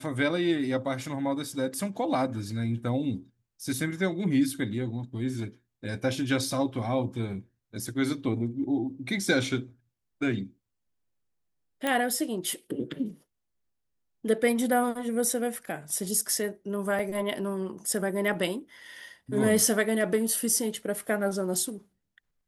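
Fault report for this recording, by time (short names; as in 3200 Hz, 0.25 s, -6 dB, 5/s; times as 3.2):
11.87 pop -14 dBFS
16.99 gap 3.7 ms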